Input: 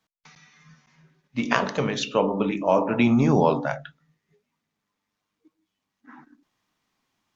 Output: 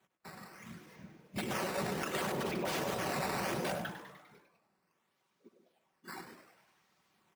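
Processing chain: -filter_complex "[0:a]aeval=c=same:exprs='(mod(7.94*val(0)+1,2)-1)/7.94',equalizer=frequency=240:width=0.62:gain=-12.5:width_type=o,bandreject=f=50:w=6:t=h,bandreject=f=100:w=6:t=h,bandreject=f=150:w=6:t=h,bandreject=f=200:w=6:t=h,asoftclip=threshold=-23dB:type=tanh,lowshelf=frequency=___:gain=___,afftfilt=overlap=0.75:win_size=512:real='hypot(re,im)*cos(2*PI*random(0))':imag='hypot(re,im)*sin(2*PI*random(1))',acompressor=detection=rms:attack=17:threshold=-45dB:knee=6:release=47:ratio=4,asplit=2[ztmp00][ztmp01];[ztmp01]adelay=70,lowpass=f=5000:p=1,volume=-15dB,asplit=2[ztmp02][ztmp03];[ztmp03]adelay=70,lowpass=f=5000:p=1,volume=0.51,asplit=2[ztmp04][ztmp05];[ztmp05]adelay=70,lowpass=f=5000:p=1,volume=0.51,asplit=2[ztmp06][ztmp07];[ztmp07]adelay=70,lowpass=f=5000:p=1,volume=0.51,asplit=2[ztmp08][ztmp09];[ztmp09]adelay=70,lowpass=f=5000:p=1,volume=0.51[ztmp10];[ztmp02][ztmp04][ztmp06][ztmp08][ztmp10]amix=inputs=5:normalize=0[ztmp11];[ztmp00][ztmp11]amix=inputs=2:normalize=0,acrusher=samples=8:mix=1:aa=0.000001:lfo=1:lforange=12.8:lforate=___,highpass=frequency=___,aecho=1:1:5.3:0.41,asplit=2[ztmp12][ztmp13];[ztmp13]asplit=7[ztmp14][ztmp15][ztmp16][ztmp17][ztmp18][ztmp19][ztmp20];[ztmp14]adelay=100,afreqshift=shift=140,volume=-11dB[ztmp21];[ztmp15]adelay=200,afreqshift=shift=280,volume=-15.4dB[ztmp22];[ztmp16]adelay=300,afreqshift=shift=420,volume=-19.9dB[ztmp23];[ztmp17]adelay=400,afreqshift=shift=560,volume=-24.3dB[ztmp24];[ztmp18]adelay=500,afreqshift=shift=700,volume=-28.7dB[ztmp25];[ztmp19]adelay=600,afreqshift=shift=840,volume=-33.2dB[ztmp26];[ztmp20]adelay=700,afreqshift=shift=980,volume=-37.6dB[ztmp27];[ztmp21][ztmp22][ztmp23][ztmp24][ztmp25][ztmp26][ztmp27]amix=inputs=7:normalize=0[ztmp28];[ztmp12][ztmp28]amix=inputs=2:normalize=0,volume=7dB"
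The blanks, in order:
410, 8, 0.69, 110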